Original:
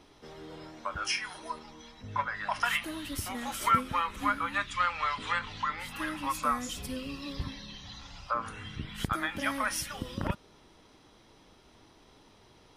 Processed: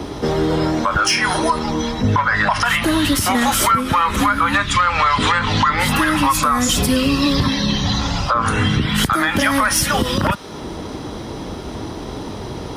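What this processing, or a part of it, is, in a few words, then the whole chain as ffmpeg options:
mastering chain: -filter_complex "[0:a]highpass=41,equalizer=frequency=2500:width_type=o:width=0.77:gain=-3.5,acrossover=split=130|920[link_01][link_02][link_03];[link_01]acompressor=threshold=-56dB:ratio=4[link_04];[link_02]acompressor=threshold=-48dB:ratio=4[link_05];[link_03]acompressor=threshold=-32dB:ratio=4[link_06];[link_04][link_05][link_06]amix=inputs=3:normalize=0,acompressor=threshold=-39dB:ratio=2,asoftclip=type=tanh:threshold=-29.5dB,tiltshelf=frequency=750:gain=4.5,alimiter=level_in=35.5dB:limit=-1dB:release=50:level=0:latency=1,asettb=1/sr,asplit=3[link_07][link_08][link_09];[link_07]atrim=end=2.454[link_10];[link_08]atrim=start=2.45:end=3.42,asetpts=PTS-STARTPTS,afade=type=in:duration=0.004:curve=qsin,afade=type=out:start_time=0.966:duration=0.004:curve=qsin,highshelf=frequency=9200:gain=-5.5[link_11];[link_09]atrim=start=3.416[link_12];[link_10][link_11]acrossfade=duration=0.004:curve1=hsin:curve2=qsin[link_13];[link_13][link_12]acrossfade=duration=0.004:curve1=qsin:curve2=hsin,volume=-6.5dB"

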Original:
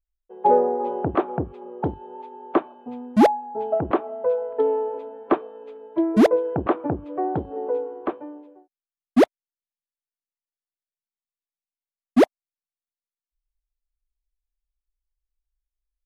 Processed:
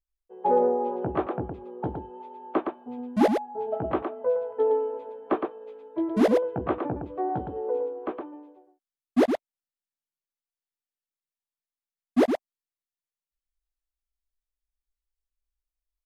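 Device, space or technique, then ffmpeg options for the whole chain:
slapback doubling: -filter_complex "[0:a]asplit=3[link_01][link_02][link_03];[link_02]adelay=16,volume=-5dB[link_04];[link_03]adelay=114,volume=-5dB[link_05];[link_01][link_04][link_05]amix=inputs=3:normalize=0,volume=-6.5dB"

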